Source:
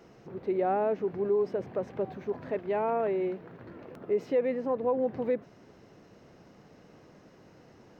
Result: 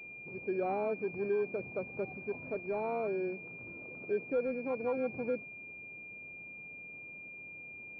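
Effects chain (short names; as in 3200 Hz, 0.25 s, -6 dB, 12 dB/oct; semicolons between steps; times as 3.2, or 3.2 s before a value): air absorption 350 m; pulse-width modulation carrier 2400 Hz; gain -4.5 dB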